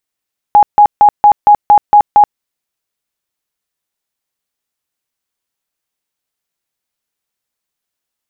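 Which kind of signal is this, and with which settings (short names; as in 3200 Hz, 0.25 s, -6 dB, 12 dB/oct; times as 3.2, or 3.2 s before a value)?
tone bursts 830 Hz, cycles 65, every 0.23 s, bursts 8, -1.5 dBFS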